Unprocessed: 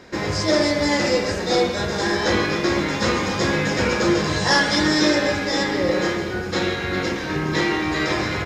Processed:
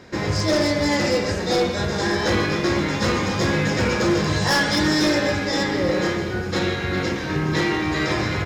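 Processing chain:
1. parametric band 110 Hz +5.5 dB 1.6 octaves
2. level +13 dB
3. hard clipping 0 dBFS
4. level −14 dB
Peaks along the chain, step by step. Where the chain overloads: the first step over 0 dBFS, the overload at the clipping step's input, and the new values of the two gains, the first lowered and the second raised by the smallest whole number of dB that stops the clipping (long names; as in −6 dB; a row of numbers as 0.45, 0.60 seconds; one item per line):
−6.0, +7.0, 0.0, −14.0 dBFS
step 2, 7.0 dB
step 2 +6 dB, step 4 −7 dB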